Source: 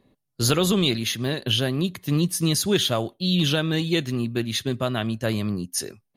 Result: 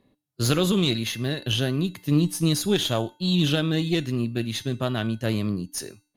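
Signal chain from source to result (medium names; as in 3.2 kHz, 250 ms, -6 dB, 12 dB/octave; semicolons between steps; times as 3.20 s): Chebyshev shaper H 2 -10 dB, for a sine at -7.5 dBFS; feedback comb 300 Hz, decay 0.42 s, harmonics odd, mix 60%; harmonic-percussive split harmonic +5 dB; trim +2.5 dB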